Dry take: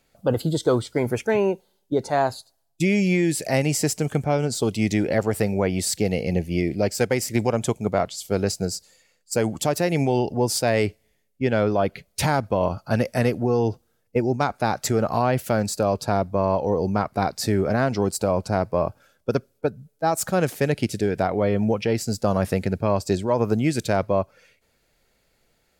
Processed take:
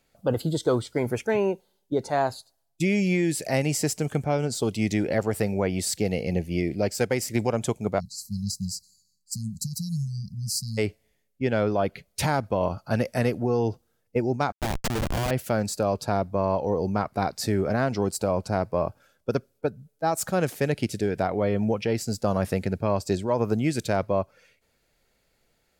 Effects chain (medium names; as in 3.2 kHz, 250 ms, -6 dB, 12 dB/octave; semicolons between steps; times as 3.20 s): 7.99–10.78 s: spectral selection erased 220–3900 Hz; 14.52–15.31 s: Schmitt trigger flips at -21 dBFS; trim -3 dB